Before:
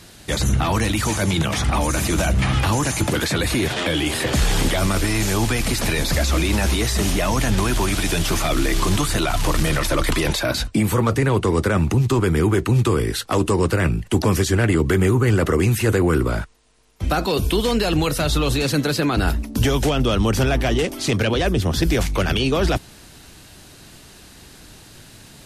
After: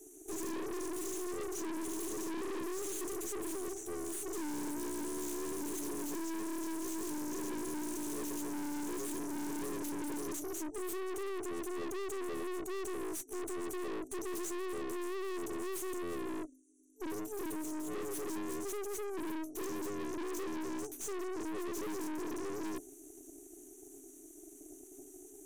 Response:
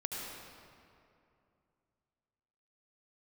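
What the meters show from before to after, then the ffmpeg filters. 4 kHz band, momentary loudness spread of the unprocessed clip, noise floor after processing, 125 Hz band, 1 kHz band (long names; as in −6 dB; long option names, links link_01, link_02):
−27.5 dB, 3 LU, −55 dBFS, −38.5 dB, −19.5 dB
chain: -af "afftfilt=real='re*(1-between(b*sr/4096,180,5500))':imag='im*(1-between(b*sr/4096,180,5500))':win_size=4096:overlap=0.75,afreqshift=260,aeval=exprs='(tanh(56.2*val(0)+0.65)-tanh(0.65))/56.2':channel_layout=same,volume=-3.5dB"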